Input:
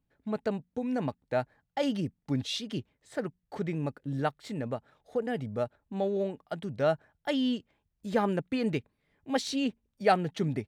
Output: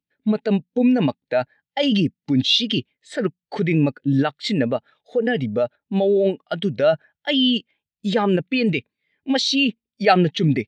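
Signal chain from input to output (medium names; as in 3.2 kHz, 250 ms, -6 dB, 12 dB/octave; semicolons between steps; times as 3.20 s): frequency weighting D; in parallel at +2 dB: compressor with a negative ratio -33 dBFS, ratio -0.5; on the sum: spectral contrast expander 1.5:1; trim +4.5 dB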